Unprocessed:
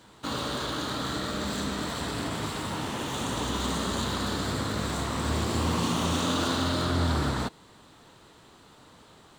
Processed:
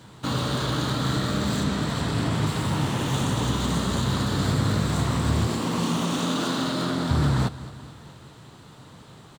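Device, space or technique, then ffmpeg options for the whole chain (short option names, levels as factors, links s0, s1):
soft clipper into limiter: -filter_complex "[0:a]asoftclip=type=tanh:threshold=0.141,alimiter=limit=0.0794:level=0:latency=1:release=263,asettb=1/sr,asplit=3[s0][s1][s2];[s0]atrim=end=1.634[s3];[s1]atrim=start=1.63:end=2.47,asetpts=PTS-STARTPTS,afade=t=in:d=0.004:c=qsin,afade=t=out:st=0.836:d=0.004:c=qsin,highshelf=f=9300:g=-6.5[s4];[s2]atrim=start=2.466[s5];[s3][s4]acrossfade=d=0.004:c1=hsin:c2=qsin[s6];[s6][s5]acrossfade=d=0.004:c1=qsin:c2=hsin,asettb=1/sr,asplit=3[s7][s8][s9];[s7]atrim=end=5.484[s10];[s8]atrim=start=5.48:end=7.11,asetpts=PTS-STARTPTS,afade=t=in:d=0.004:c=qsin,afade=t=out:st=1.626:d=0.004:c=qsin,highpass=f=170:w=0.5412,highpass=f=170:w=1.3066[s11];[s9]atrim=start=7.106[s12];[s10][s11]acrossfade=d=0.004:c1=hsin:c2=qsin[s13];[s13][s12]acrossfade=d=0.004:c1=qsin:c2=hsin,equalizer=f=130:w=1.3:g=11.5,aecho=1:1:217|434|651|868|1085:0.141|0.0791|0.0443|0.0248|0.0139,volume=1.5"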